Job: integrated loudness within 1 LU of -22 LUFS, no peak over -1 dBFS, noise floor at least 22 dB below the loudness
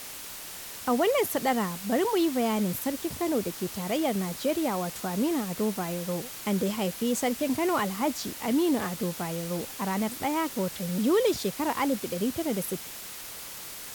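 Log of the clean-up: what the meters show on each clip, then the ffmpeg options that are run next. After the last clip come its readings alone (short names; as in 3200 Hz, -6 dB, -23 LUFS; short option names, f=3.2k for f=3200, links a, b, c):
noise floor -41 dBFS; noise floor target -51 dBFS; loudness -29.0 LUFS; peak -14.5 dBFS; loudness target -22.0 LUFS
-> -af "afftdn=nr=10:nf=-41"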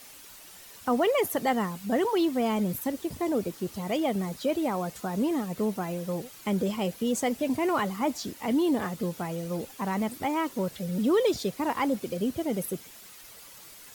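noise floor -49 dBFS; noise floor target -51 dBFS
-> -af "afftdn=nr=6:nf=-49"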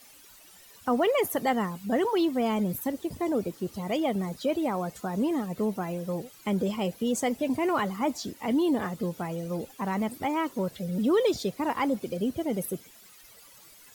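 noise floor -53 dBFS; loudness -29.0 LUFS; peak -15.0 dBFS; loudness target -22.0 LUFS
-> -af "volume=7dB"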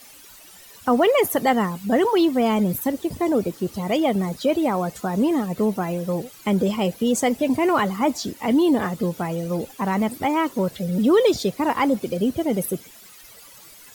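loudness -22.0 LUFS; peak -8.0 dBFS; noise floor -46 dBFS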